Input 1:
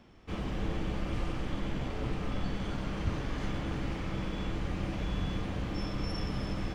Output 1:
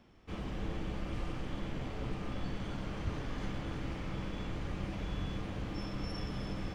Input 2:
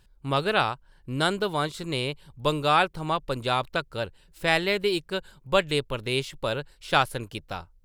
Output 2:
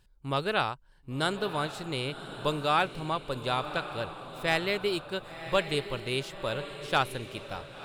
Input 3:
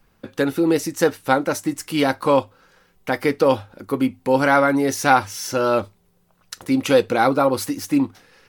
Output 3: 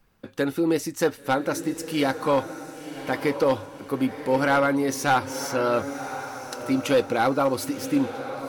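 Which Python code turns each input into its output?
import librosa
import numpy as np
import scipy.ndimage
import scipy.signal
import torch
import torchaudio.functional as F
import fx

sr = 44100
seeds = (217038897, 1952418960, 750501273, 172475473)

y = fx.echo_diffused(x, sr, ms=1063, feedback_pct=40, wet_db=-11.0)
y = np.clip(y, -10.0 ** (-9.0 / 20.0), 10.0 ** (-9.0 / 20.0))
y = y * 10.0 ** (-4.5 / 20.0)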